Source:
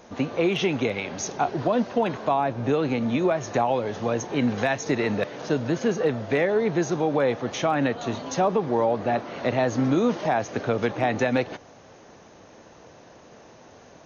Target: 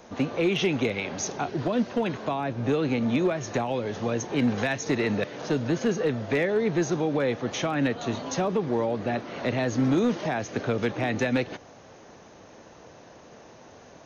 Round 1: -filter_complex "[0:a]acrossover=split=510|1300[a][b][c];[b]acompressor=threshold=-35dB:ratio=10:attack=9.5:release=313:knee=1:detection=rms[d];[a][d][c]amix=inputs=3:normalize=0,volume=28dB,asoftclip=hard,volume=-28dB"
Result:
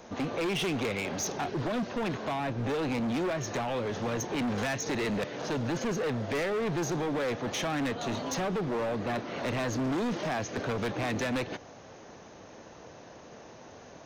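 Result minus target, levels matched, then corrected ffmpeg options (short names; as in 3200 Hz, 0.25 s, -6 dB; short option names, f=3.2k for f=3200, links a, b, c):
overloaded stage: distortion +18 dB
-filter_complex "[0:a]acrossover=split=510|1300[a][b][c];[b]acompressor=threshold=-35dB:ratio=10:attack=9.5:release=313:knee=1:detection=rms[d];[a][d][c]amix=inputs=3:normalize=0,volume=17dB,asoftclip=hard,volume=-17dB"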